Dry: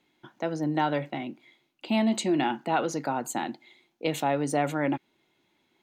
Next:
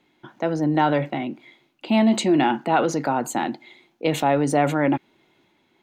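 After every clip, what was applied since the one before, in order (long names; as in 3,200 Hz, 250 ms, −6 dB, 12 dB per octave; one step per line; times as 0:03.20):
high-shelf EQ 3,700 Hz −7 dB
transient designer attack −1 dB, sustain +3 dB
level +7 dB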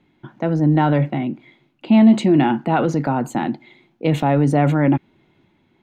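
bass and treble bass +12 dB, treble −8 dB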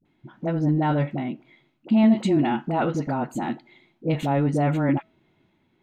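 tuned comb filter 650 Hz, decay 0.37 s, mix 50%
all-pass dispersion highs, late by 54 ms, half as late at 540 Hz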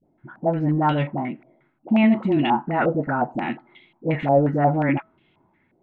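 low-pass on a step sequencer 5.6 Hz 630–3,000 Hz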